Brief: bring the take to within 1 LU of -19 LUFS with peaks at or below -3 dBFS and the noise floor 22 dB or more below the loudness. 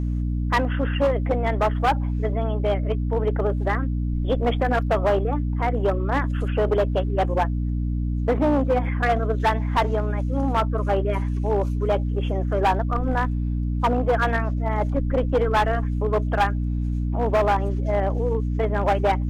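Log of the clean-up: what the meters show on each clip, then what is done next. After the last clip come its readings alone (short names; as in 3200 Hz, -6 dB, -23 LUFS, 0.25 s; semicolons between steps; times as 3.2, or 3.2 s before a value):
clipped 2.0%; flat tops at -14.5 dBFS; hum 60 Hz; harmonics up to 300 Hz; hum level -22 dBFS; loudness -23.0 LUFS; peak -14.5 dBFS; loudness target -19.0 LUFS
-> clip repair -14.5 dBFS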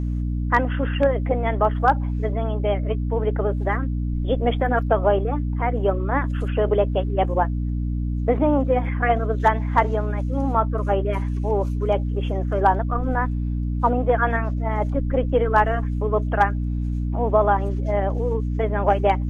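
clipped 0.0%; hum 60 Hz; harmonics up to 300 Hz; hum level -22 dBFS
-> de-hum 60 Hz, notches 5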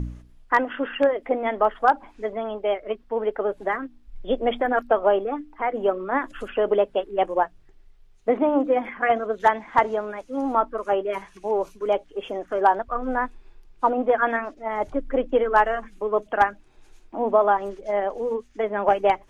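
hum none; loudness -24.0 LUFS; peak -4.5 dBFS; loudness target -19.0 LUFS
-> gain +5 dB; limiter -3 dBFS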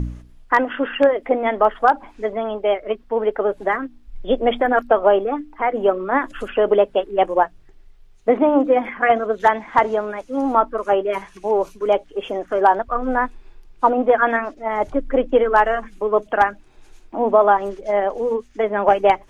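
loudness -19.5 LUFS; peak -3.0 dBFS; noise floor -48 dBFS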